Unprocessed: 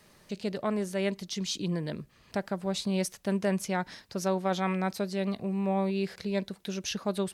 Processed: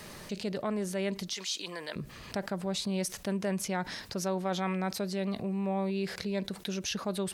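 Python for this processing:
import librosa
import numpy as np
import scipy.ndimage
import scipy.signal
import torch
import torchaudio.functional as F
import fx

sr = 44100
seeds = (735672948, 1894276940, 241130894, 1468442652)

y = fx.highpass(x, sr, hz=840.0, slope=12, at=(1.33, 1.96))
y = fx.env_flatten(y, sr, amount_pct=50)
y = y * librosa.db_to_amplitude(-4.5)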